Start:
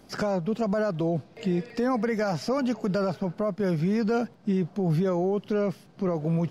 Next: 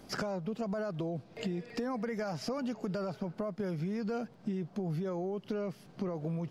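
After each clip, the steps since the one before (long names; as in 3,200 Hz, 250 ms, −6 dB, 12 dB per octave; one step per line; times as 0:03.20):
downward compressor 6 to 1, threshold −33 dBFS, peak gain reduction 11 dB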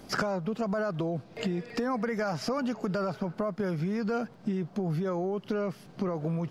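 dynamic equaliser 1,300 Hz, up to +5 dB, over −54 dBFS, Q 1.4
level +4.5 dB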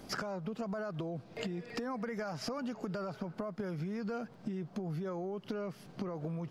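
downward compressor, threshold −33 dBFS, peak gain reduction 8.5 dB
level −2 dB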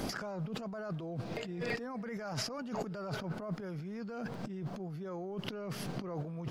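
compressor whose output falls as the input rises −46 dBFS, ratio −1
level +6.5 dB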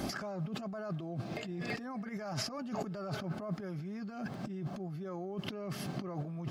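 notch comb filter 480 Hz
level +1 dB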